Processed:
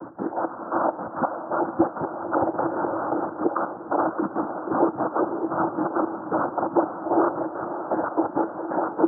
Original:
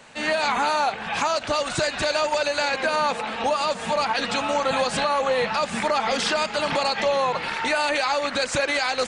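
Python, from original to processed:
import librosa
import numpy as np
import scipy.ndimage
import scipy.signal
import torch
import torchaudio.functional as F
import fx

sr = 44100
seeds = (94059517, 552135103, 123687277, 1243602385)

y = fx.delta_mod(x, sr, bps=64000, step_db=-30.5)
y = y + 10.0 ** (-7.5 / 20.0) * np.pad(y, (int(628 * sr / 1000.0), 0))[:len(y)]
y = fx.step_gate(y, sr, bpm=169, pattern='x.x.x...x', floor_db=-12.0, edge_ms=4.5)
y = fx.noise_vocoder(y, sr, seeds[0], bands=8)
y = scipy.signal.sosfilt(scipy.signal.butter(12, 1400.0, 'lowpass', fs=sr, output='sos'), y)
y = fx.peak_eq(y, sr, hz=330.0, db=15.0, octaves=0.32)
y = fx.echo_diffused(y, sr, ms=522, feedback_pct=42, wet_db=-10.5)
y = fx.env_flatten(y, sr, amount_pct=50, at=(2.54, 3.2))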